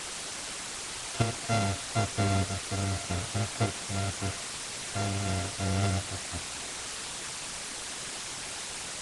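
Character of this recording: a buzz of ramps at a fixed pitch in blocks of 64 samples; tremolo saw up 0.82 Hz, depth 60%; a quantiser's noise floor 6-bit, dither triangular; Nellymoser

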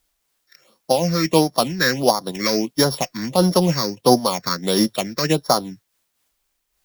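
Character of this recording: a buzz of ramps at a fixed pitch in blocks of 8 samples; phasing stages 6, 1.5 Hz, lowest notch 770–2600 Hz; a quantiser's noise floor 12-bit, dither triangular; noise-modulated level

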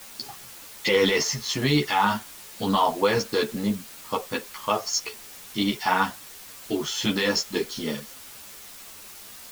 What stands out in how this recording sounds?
a quantiser's noise floor 8-bit, dither triangular; a shimmering, thickened sound

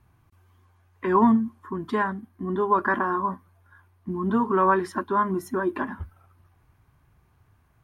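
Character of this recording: noise floor -63 dBFS; spectral tilt -2.5 dB/oct

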